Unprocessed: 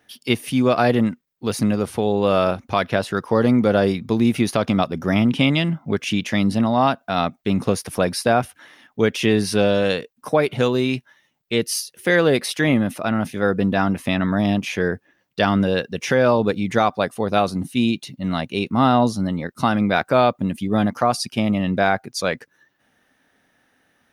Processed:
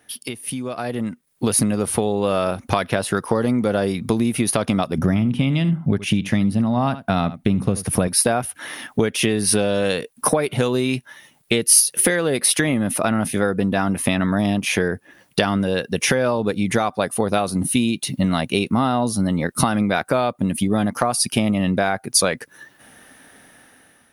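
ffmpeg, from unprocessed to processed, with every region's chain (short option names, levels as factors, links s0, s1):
-filter_complex "[0:a]asettb=1/sr,asplit=3[s0][s1][s2];[s0]atrim=end=4.984[s3];[s1]atrim=start=4.98:end=8.08,asetpts=PTS-STARTPTS,afade=t=in:d=0.004:c=qsin,afade=t=out:st=3.096:d=0.004:c=qsin,bass=f=250:g=10,treble=f=4000:g=-5,aecho=1:1:75:0.141,atrim=end_sample=136710[s4];[s2]atrim=start=8.076[s5];[s3][s4]acrossfade=d=0.004:c1=hsin:c2=qsin[s6];[s6][s5]acrossfade=d=0.004:c1=qsin:c2=hsin,acompressor=threshold=0.0282:ratio=12,equalizer=f=10000:t=o:w=0.39:g=15,dynaudnorm=f=420:g=5:m=3.98,volume=1.41"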